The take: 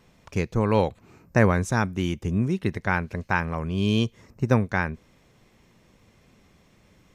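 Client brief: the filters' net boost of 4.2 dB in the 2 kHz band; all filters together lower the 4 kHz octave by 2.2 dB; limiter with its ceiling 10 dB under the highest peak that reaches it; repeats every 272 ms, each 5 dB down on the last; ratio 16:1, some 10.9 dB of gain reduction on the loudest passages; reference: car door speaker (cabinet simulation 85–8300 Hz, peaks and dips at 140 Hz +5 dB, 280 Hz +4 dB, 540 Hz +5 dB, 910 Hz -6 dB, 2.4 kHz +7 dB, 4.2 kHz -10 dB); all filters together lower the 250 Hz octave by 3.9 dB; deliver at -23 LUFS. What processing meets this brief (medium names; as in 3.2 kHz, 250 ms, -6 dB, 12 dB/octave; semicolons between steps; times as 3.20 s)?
peaking EQ 250 Hz -7.5 dB; peaking EQ 2 kHz +5 dB; peaking EQ 4 kHz -5 dB; compression 16:1, threshold -26 dBFS; peak limiter -22.5 dBFS; cabinet simulation 85–8300 Hz, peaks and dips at 140 Hz +5 dB, 280 Hz +4 dB, 540 Hz +5 dB, 910 Hz -6 dB, 2.4 kHz +7 dB, 4.2 kHz -10 dB; feedback delay 272 ms, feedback 56%, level -5 dB; trim +10 dB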